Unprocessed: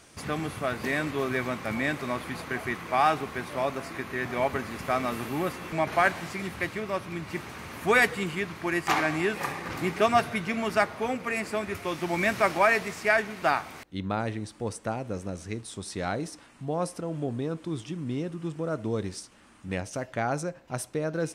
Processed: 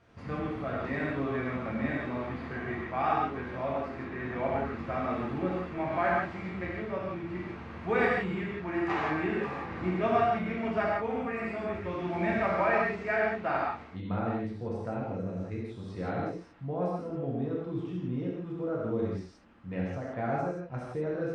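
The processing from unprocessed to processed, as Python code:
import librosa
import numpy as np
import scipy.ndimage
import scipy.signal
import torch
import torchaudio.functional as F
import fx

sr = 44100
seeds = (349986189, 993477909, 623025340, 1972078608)

y = fx.spacing_loss(x, sr, db_at_10k=34)
y = fx.rev_gated(y, sr, seeds[0], gate_ms=200, shape='flat', drr_db=-6.0)
y = F.gain(torch.from_numpy(y), -7.0).numpy()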